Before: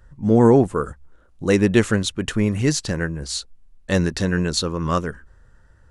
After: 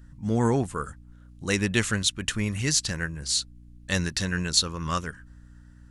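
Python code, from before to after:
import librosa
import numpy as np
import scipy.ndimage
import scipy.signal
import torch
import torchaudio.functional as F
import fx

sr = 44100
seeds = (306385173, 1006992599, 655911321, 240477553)

y = fx.tone_stack(x, sr, knobs='5-5-5')
y = fx.add_hum(y, sr, base_hz=60, snr_db=21)
y = y * 10.0 ** (8.5 / 20.0)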